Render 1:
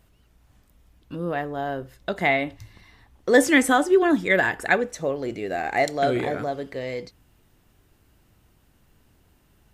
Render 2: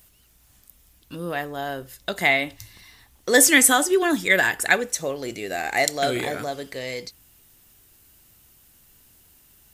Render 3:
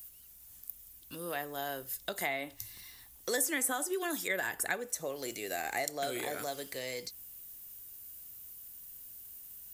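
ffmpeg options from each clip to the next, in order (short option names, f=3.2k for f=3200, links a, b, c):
-af "crystalizer=i=6:c=0,volume=-3dB"
-filter_complex "[0:a]acrossover=split=300|1600[a][b][c];[a]acompressor=threshold=-44dB:ratio=4[d];[b]acompressor=threshold=-26dB:ratio=4[e];[c]acompressor=threshold=-36dB:ratio=4[f];[d][e][f]amix=inputs=3:normalize=0,aemphasis=mode=production:type=50fm,volume=-7.5dB"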